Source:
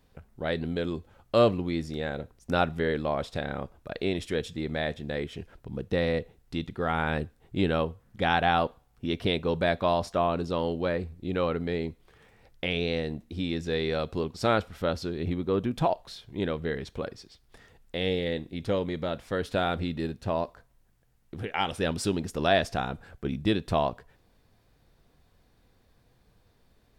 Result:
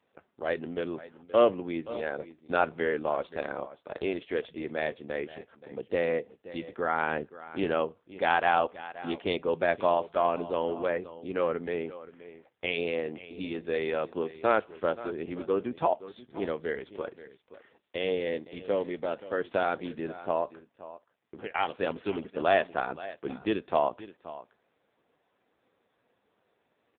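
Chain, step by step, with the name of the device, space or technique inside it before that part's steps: 9.93–11.15 s: de-esser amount 70%; satellite phone (band-pass 330–3200 Hz; delay 526 ms -16 dB; trim +1.5 dB; AMR-NB 5.9 kbps 8 kHz)

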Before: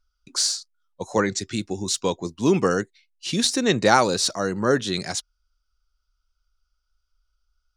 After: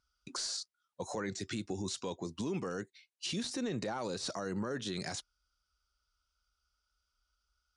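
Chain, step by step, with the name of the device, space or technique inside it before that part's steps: podcast mastering chain (high-pass 69 Hz; de-esser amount 70%; compression 4:1, threshold -29 dBFS, peak gain reduction 13 dB; peak limiter -27.5 dBFS, peak gain reduction 10.5 dB; MP3 128 kbps 24 kHz)

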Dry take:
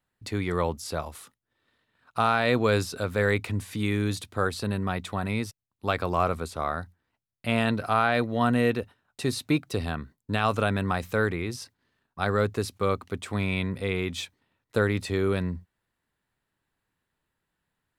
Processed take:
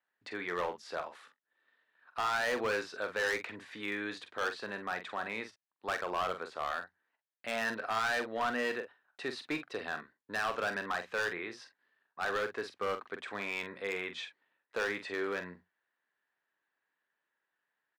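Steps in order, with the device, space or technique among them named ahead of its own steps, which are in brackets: megaphone (band-pass 460–3400 Hz; peaking EQ 1.7 kHz +8 dB 0.34 oct; hard clipper -23.5 dBFS, distortion -8 dB; doubling 45 ms -9 dB); trim -4.5 dB

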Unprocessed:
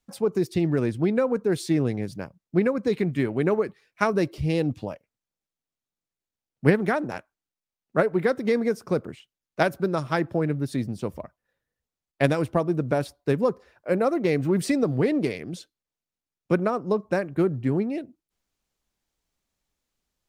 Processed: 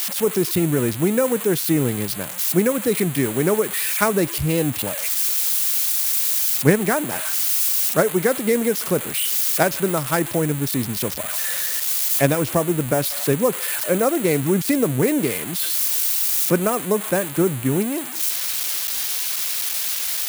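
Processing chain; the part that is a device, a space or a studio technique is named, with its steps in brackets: budget class-D amplifier (dead-time distortion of 0.082 ms; zero-crossing glitches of -13 dBFS); trim +3.5 dB

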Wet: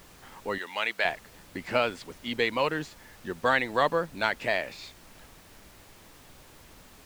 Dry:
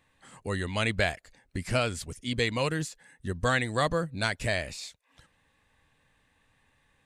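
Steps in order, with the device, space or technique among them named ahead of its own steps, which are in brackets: horn gramophone (band-pass 280–3400 Hz; peaking EQ 900 Hz +6.5 dB 0.27 oct; wow and flutter; pink noise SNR 21 dB); 0.58–1.05 s: high-pass 1.1 kHz 6 dB/octave; trim +2.5 dB

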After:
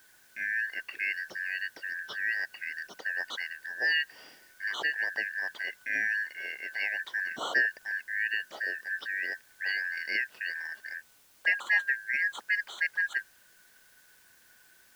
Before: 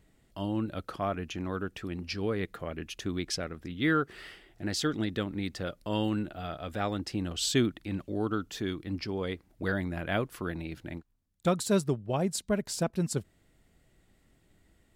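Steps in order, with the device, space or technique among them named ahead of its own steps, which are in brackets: split-band scrambled radio (four frequency bands reordered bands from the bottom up 3142; band-pass 330–3100 Hz; white noise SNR 28 dB)

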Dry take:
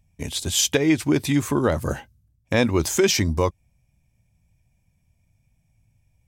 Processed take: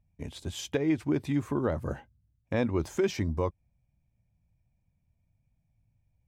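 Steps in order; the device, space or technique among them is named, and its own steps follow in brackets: through cloth (treble shelf 2.9 kHz -16 dB); trim -7.5 dB

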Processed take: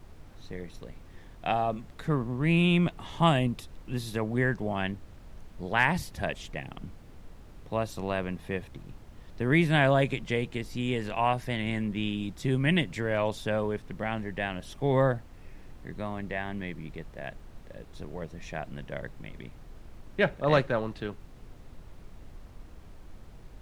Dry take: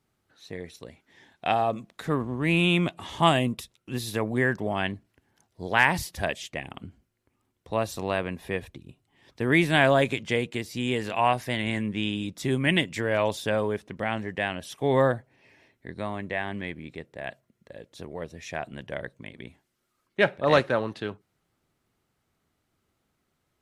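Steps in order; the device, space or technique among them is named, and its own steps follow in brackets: car interior (peaking EQ 150 Hz +6 dB 0.8 oct; treble shelf 4.7 kHz -5 dB; brown noise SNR 14 dB); trim -3.5 dB

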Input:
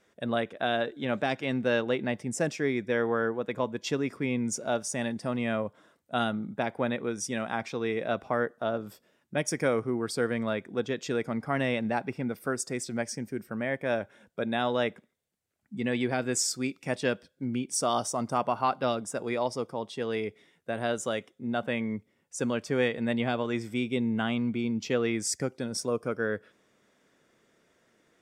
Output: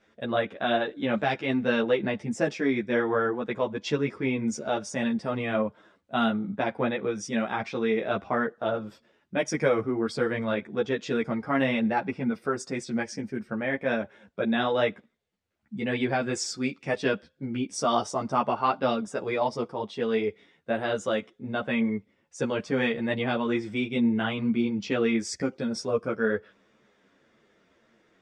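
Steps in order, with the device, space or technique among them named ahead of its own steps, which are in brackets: string-machine ensemble chorus (three-phase chorus; low-pass 4.6 kHz 12 dB/octave); trim +6 dB

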